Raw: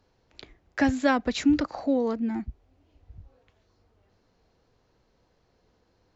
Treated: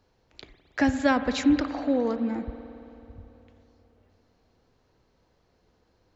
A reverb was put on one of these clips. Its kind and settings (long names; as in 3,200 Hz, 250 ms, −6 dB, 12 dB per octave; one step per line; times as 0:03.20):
spring reverb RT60 3.1 s, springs 55 ms, chirp 40 ms, DRR 10 dB